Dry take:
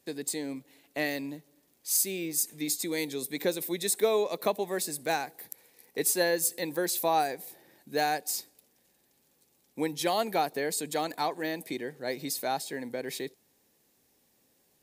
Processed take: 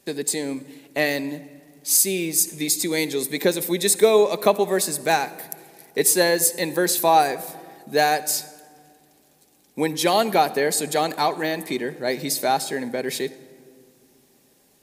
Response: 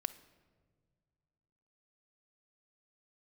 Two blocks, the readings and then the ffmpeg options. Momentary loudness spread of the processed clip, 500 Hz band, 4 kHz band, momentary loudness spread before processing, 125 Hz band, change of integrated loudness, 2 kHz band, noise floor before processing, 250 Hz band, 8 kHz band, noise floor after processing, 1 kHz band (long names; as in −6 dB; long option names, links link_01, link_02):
14 LU, +9.5 dB, +9.0 dB, 14 LU, +10.0 dB, +9.0 dB, +9.0 dB, −70 dBFS, +8.5 dB, +9.5 dB, −59 dBFS, +9.5 dB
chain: -filter_complex "[0:a]asplit=2[link_01][link_02];[1:a]atrim=start_sample=2205,asetrate=25137,aresample=44100[link_03];[link_02][link_03]afir=irnorm=-1:irlink=0,volume=3.5dB[link_04];[link_01][link_04]amix=inputs=2:normalize=0"